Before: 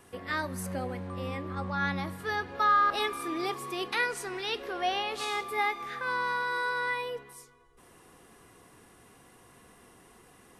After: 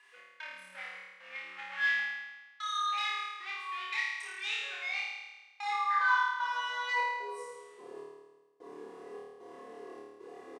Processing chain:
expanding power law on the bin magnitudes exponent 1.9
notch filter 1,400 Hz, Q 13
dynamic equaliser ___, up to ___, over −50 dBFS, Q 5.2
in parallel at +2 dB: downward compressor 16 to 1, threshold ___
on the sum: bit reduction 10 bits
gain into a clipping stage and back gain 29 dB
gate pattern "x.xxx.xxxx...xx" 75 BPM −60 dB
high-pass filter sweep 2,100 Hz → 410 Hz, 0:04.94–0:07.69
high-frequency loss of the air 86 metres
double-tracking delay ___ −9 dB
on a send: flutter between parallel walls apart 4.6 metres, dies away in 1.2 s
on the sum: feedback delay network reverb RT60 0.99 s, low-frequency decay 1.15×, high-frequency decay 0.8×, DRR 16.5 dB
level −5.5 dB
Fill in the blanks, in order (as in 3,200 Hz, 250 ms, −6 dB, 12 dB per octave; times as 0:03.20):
780 Hz, +7 dB, −36 dBFS, 34 ms